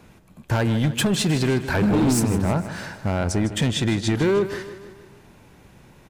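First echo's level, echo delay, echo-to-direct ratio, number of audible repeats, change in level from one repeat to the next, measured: -13.0 dB, 0.155 s, -11.5 dB, 4, -5.5 dB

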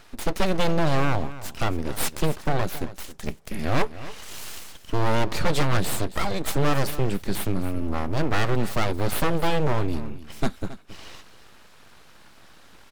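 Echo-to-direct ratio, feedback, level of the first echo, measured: -15.5 dB, no steady repeat, -15.5 dB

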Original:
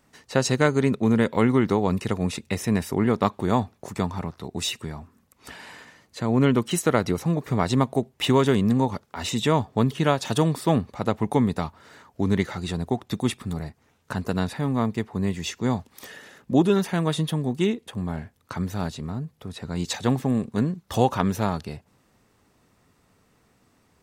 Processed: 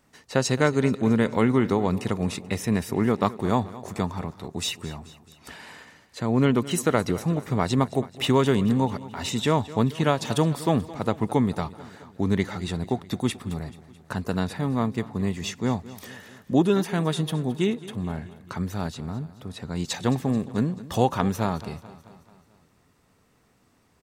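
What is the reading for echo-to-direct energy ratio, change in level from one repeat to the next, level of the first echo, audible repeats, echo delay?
-16.0 dB, -5.0 dB, -17.5 dB, 4, 0.217 s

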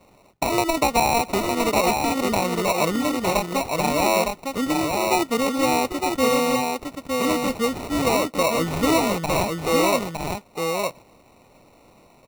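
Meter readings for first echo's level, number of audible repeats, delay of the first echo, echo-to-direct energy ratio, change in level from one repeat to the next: -4.0 dB, 1, 0.91 s, -4.0 dB, no steady repeat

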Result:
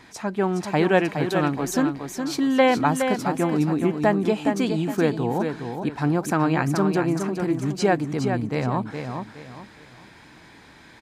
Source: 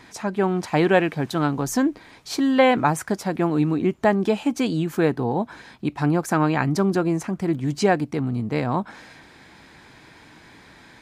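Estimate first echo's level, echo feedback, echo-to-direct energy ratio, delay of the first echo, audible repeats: -6.5 dB, 31%, -6.0 dB, 0.416 s, 3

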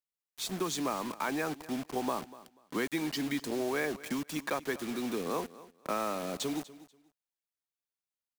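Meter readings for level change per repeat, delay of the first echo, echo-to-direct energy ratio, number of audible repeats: -13.5 dB, 0.243 s, -18.0 dB, 2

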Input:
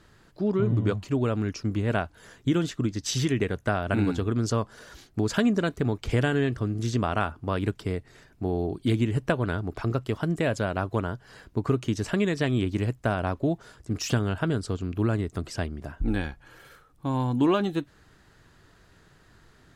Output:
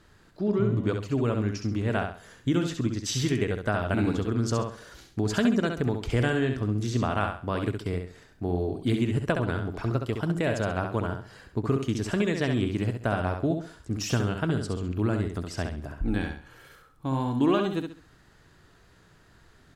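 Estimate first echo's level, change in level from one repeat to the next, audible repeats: -6.0 dB, -10.5 dB, 3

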